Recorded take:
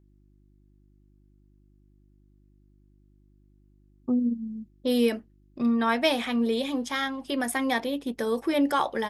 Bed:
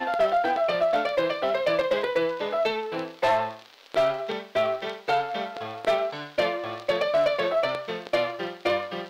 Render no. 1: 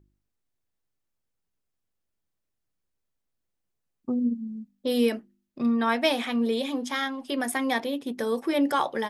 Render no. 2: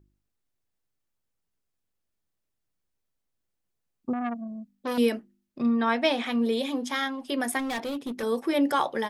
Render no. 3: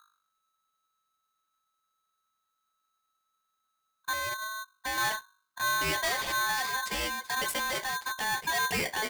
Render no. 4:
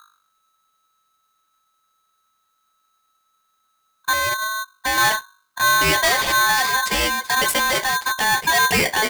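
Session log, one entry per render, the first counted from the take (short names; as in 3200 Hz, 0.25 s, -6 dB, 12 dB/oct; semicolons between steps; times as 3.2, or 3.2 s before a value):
de-hum 50 Hz, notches 7
4.13–4.98 core saturation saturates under 1300 Hz; 5.62–6.26 air absorption 65 m; 7.59–8.23 overloaded stage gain 28 dB
soft clip -25.5 dBFS, distortion -10 dB; polarity switched at an audio rate 1300 Hz
gain +12 dB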